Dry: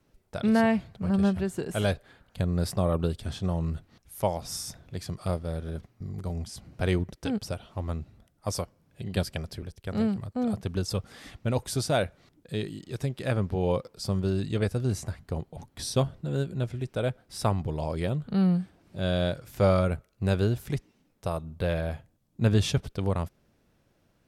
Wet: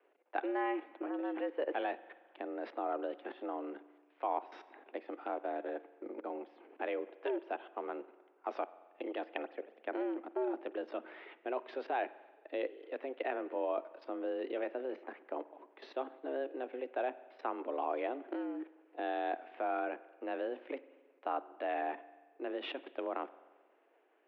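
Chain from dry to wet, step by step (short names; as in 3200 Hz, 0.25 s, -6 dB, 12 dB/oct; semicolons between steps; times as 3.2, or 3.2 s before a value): level quantiser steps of 18 dB; mistuned SSB +130 Hz 220–2700 Hz; spring tank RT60 1.4 s, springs 44 ms, chirp 25 ms, DRR 16.5 dB; gain +4 dB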